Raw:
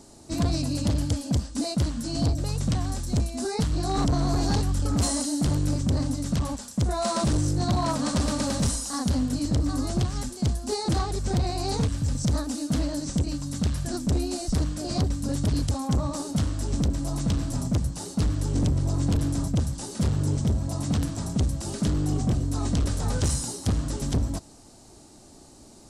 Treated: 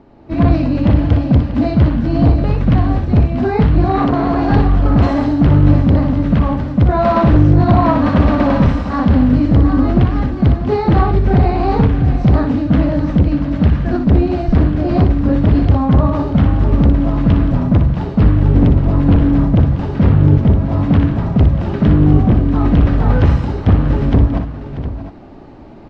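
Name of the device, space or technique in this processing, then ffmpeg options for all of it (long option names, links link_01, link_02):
action camera in a waterproof case: -filter_complex "[0:a]asettb=1/sr,asplit=3[link_01][link_02][link_03];[link_01]atrim=end=3.844[link_04];[link_02]atrim=start=3.84:end=4.52,asetpts=PTS-STARTPTS,afade=type=in:duration=0.004:curve=qsin,afade=type=out:start_time=0.676:duration=0.004:curve=qsin,highpass=frequency=280:poles=1[link_05];[link_03]atrim=start=4.516[link_06];[link_04][link_05]acrossfade=duration=0.004:curve1=hsin:curve2=qsin[link_07];[link_07][link_06]acrossfade=duration=0.004:curve1=qsin:curve2=hsin,lowpass=frequency=2500:width=0.5412,lowpass=frequency=2500:width=1.3066,aecho=1:1:60|638|710:0.422|0.211|0.237,dynaudnorm=framelen=130:gausssize=5:maxgain=8dB,volume=5dB" -ar 44100 -c:a aac -b:a 64k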